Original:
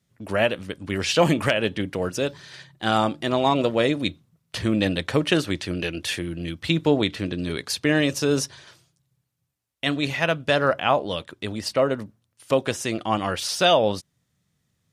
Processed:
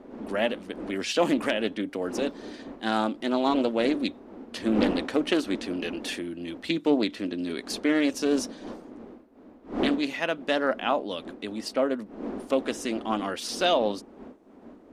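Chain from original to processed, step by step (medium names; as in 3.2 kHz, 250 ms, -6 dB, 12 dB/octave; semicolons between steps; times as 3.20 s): wind noise 420 Hz -34 dBFS; resonant low shelf 180 Hz -10 dB, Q 3; loudspeaker Doppler distortion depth 0.24 ms; trim -6 dB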